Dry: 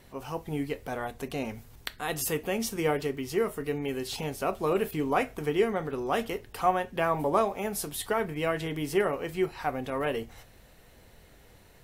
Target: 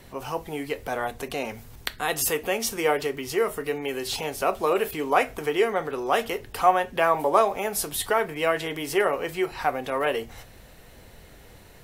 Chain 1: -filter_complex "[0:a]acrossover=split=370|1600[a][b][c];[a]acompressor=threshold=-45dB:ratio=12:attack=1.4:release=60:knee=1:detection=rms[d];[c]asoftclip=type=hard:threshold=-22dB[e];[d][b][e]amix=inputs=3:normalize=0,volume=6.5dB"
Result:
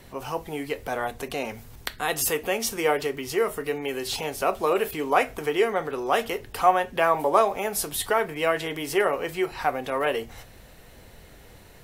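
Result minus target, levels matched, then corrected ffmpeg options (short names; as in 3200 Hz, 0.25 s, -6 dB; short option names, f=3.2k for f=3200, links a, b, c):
hard clip: distortion +10 dB
-filter_complex "[0:a]acrossover=split=370|1600[a][b][c];[a]acompressor=threshold=-45dB:ratio=12:attack=1.4:release=60:knee=1:detection=rms[d];[c]asoftclip=type=hard:threshold=-16dB[e];[d][b][e]amix=inputs=3:normalize=0,volume=6.5dB"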